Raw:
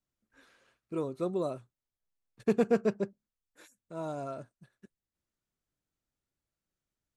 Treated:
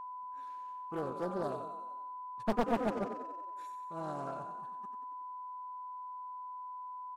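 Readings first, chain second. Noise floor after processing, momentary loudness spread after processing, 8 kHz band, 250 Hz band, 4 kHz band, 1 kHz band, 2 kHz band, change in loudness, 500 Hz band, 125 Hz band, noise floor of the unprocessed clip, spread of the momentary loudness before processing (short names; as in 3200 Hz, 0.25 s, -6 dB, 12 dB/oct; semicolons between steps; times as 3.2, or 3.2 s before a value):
-45 dBFS, 11 LU, n/a, -4.5 dB, +0.5 dB, +8.5 dB, -1.0 dB, -7.0 dB, -5.5 dB, -4.5 dB, under -85 dBFS, 15 LU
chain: frequency-shifting echo 92 ms, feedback 58%, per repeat +30 Hz, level -8 dB; whine 1000 Hz -37 dBFS; Doppler distortion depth 0.91 ms; gain -4.5 dB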